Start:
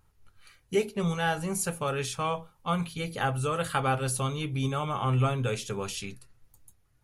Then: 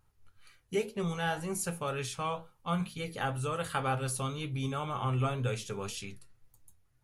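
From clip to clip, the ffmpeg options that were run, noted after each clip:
-af "flanger=delay=7.8:depth=3.9:regen=74:speed=2:shape=sinusoidal"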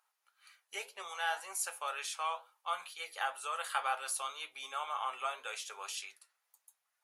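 -af "highpass=f=730:w=0.5412,highpass=f=730:w=1.3066"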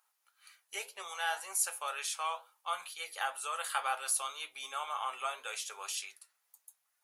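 -af "highshelf=f=6000:g=7.5"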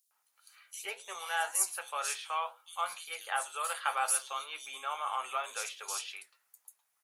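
-filter_complex "[0:a]acrossover=split=3900[s0][s1];[s0]adelay=110[s2];[s2][s1]amix=inputs=2:normalize=0,volume=1.26"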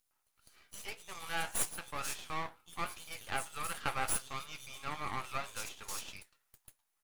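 -af "aeval=exprs='max(val(0),0)':c=same"

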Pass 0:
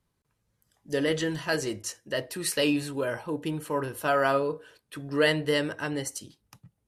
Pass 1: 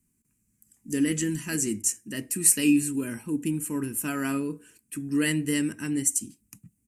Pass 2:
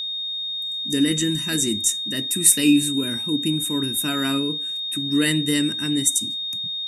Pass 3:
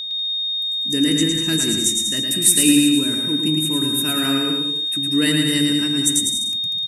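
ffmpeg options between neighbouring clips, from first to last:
-af "firequalizer=gain_entry='entry(140,0);entry(230,12);entry(540,-18);entry(860,-13);entry(2500,2);entry(3500,-13);entry(7500,15);entry(11000,11)':delay=0.05:min_phase=1"
-af "aeval=exprs='val(0)+0.0316*sin(2*PI*3700*n/s)':c=same,volume=1.68"
-af "aecho=1:1:110|192.5|254.4|300.8|335.6:0.631|0.398|0.251|0.158|0.1"

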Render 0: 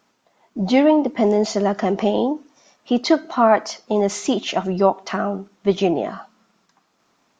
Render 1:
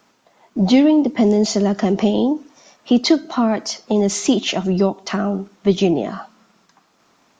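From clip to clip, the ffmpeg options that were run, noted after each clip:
-filter_complex "[0:a]acrossover=split=360|3000[s0][s1][s2];[s1]acompressor=threshold=0.0316:ratio=6[s3];[s0][s3][s2]amix=inputs=3:normalize=0,volume=2"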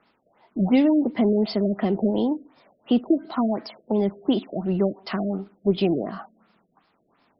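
-af "acrusher=bits=9:mix=0:aa=0.000001,afftfilt=real='re*lt(b*sr/1024,640*pow(5500/640,0.5+0.5*sin(2*PI*2.8*pts/sr)))':imag='im*lt(b*sr/1024,640*pow(5500/640,0.5+0.5*sin(2*PI*2.8*pts/sr)))':win_size=1024:overlap=0.75,volume=0.531"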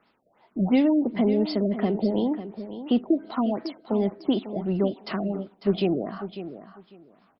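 -af "aecho=1:1:548|1096:0.251|0.0452,volume=0.794"

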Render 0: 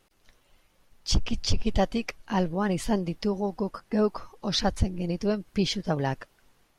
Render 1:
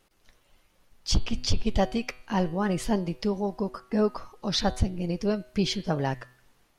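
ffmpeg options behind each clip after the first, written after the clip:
-af "bandreject=f=125.3:t=h:w=4,bandreject=f=250.6:t=h:w=4,bandreject=f=375.9:t=h:w=4,bandreject=f=501.2:t=h:w=4,bandreject=f=626.5:t=h:w=4,bandreject=f=751.8:t=h:w=4,bandreject=f=877.1:t=h:w=4,bandreject=f=1002.4:t=h:w=4,bandreject=f=1127.7:t=h:w=4,bandreject=f=1253:t=h:w=4,bandreject=f=1378.3:t=h:w=4,bandreject=f=1503.6:t=h:w=4,bandreject=f=1628.9:t=h:w=4,bandreject=f=1754.2:t=h:w=4,bandreject=f=1879.5:t=h:w=4,bandreject=f=2004.8:t=h:w=4,bandreject=f=2130.1:t=h:w=4,bandreject=f=2255.4:t=h:w=4,bandreject=f=2380.7:t=h:w=4,bandreject=f=2506:t=h:w=4,bandreject=f=2631.3:t=h:w=4,bandreject=f=2756.6:t=h:w=4,bandreject=f=2881.9:t=h:w=4,bandreject=f=3007.2:t=h:w=4,bandreject=f=3132.5:t=h:w=4,bandreject=f=3257.8:t=h:w=4,bandreject=f=3383.1:t=h:w=4,bandreject=f=3508.4:t=h:w=4,bandreject=f=3633.7:t=h:w=4,bandreject=f=3759:t=h:w=4,bandreject=f=3884.3:t=h:w=4,bandreject=f=4009.6:t=h:w=4,bandreject=f=4134.9:t=h:w=4,bandreject=f=4260.2:t=h:w=4,bandreject=f=4385.5:t=h:w=4,bandreject=f=4510.8:t=h:w=4,bandreject=f=4636.1:t=h:w=4"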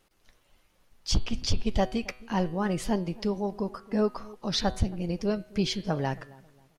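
-filter_complex "[0:a]asplit=2[s0][s1];[s1]adelay=270,lowpass=f=1200:p=1,volume=0.0891,asplit=2[s2][s3];[s3]adelay=270,lowpass=f=1200:p=1,volume=0.34,asplit=2[s4][s5];[s5]adelay=270,lowpass=f=1200:p=1,volume=0.34[s6];[s0][s2][s4][s6]amix=inputs=4:normalize=0,volume=0.841"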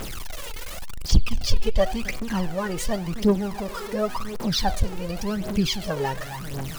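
-af "aeval=exprs='val(0)+0.5*0.0282*sgn(val(0))':c=same,aphaser=in_gain=1:out_gain=1:delay=2.4:decay=0.68:speed=0.91:type=triangular,volume=0.891"

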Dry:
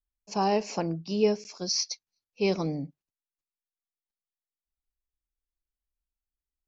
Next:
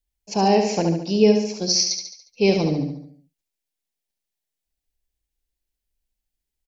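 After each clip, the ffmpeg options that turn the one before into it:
-filter_complex "[0:a]equalizer=f=1200:t=o:w=0.59:g=-12.5,asplit=2[s0][s1];[s1]aecho=0:1:71|142|213|284|355|426:0.531|0.265|0.133|0.0664|0.0332|0.0166[s2];[s0][s2]amix=inputs=2:normalize=0,volume=2.51"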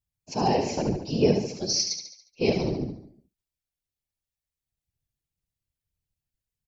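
-af "afftfilt=real='hypot(re,im)*cos(2*PI*random(0))':imag='hypot(re,im)*sin(2*PI*random(1))':win_size=512:overlap=0.75"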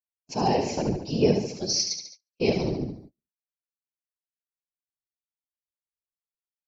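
-af "agate=range=0.0316:threshold=0.00501:ratio=16:detection=peak"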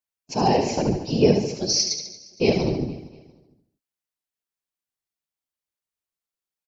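-af "aecho=1:1:232|464|696:0.112|0.0482|0.0207,volume=1.58"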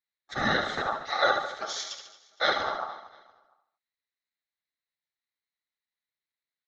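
-af "lowpass=f=3000:t=q:w=8.5,aeval=exprs='val(0)*sin(2*PI*1000*n/s)':c=same,volume=0.562"

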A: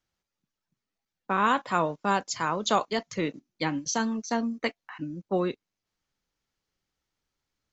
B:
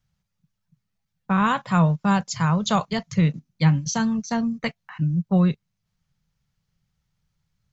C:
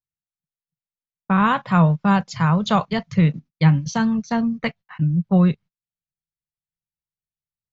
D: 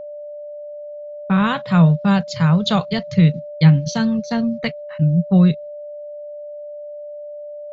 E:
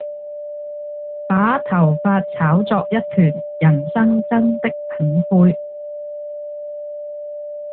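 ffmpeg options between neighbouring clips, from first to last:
-af "lowshelf=f=220:t=q:w=3:g=11,volume=1.26"
-af "agate=range=0.0282:threshold=0.00891:ratio=16:detection=peak,lowpass=3800,volume=1.41"
-af "equalizer=f=160:t=o:w=0.67:g=4,equalizer=f=1000:t=o:w=0.67:g=-5,equalizer=f=4000:t=o:w=0.67:g=8,aeval=exprs='val(0)+0.0316*sin(2*PI*590*n/s)':c=same"
-filter_complex "[0:a]acrossover=split=200 2200:gain=0.0891 1 0.1[s0][s1][s2];[s0][s1][s2]amix=inputs=3:normalize=0,alimiter=level_in=3.76:limit=0.891:release=50:level=0:latency=1,volume=0.631" -ar 8000 -c:a libopencore_amrnb -b:a 10200

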